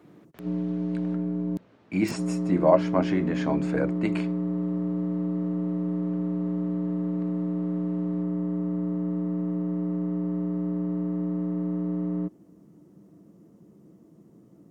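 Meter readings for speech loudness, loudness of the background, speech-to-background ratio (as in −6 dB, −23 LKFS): −27.0 LKFS, −29.0 LKFS, 2.0 dB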